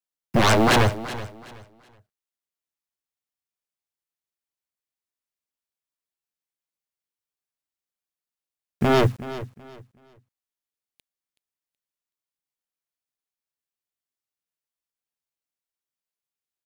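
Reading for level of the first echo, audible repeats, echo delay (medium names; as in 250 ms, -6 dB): -15.0 dB, 2, 375 ms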